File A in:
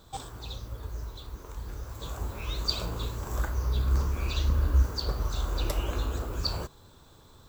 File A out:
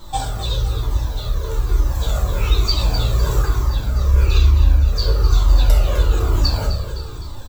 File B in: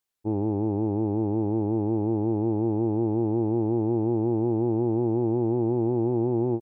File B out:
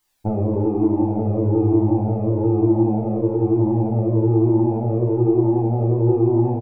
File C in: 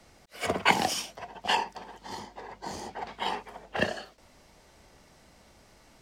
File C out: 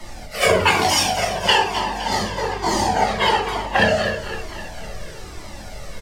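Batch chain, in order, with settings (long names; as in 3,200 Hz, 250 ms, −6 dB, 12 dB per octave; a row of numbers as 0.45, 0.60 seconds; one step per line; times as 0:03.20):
downward compressor 6 to 1, threshold −32 dBFS
on a send: repeating echo 256 ms, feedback 58%, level −10.5 dB
on the sum: rectangular room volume 72 cubic metres, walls mixed, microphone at 0.89 metres
flanger whose copies keep moving one way falling 1.1 Hz
loudness normalisation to −19 LKFS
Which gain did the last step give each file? +15.5, +16.5, +20.0 decibels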